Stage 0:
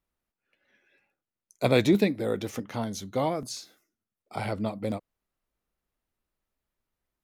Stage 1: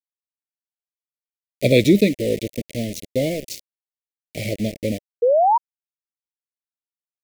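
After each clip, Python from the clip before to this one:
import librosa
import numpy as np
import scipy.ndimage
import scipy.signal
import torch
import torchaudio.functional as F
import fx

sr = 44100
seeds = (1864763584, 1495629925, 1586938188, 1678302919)

y = np.where(np.abs(x) >= 10.0 ** (-33.0 / 20.0), x, 0.0)
y = scipy.signal.sosfilt(scipy.signal.ellip(3, 1.0, 40, [590.0, 2100.0], 'bandstop', fs=sr, output='sos'), y)
y = fx.spec_paint(y, sr, seeds[0], shape='rise', start_s=5.22, length_s=0.36, low_hz=460.0, high_hz=980.0, level_db=-23.0)
y = y * 10.0 ** (8.0 / 20.0)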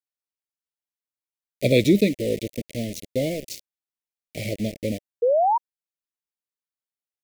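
y = fx.dynamic_eq(x, sr, hz=1300.0, q=1.9, threshold_db=-39.0, ratio=4.0, max_db=-4)
y = y * 10.0 ** (-3.0 / 20.0)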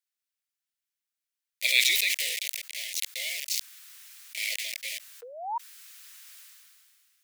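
y = scipy.signal.sosfilt(scipy.signal.butter(4, 1400.0, 'highpass', fs=sr, output='sos'), x)
y = fx.sustainer(y, sr, db_per_s=25.0)
y = y * 10.0 ** (5.0 / 20.0)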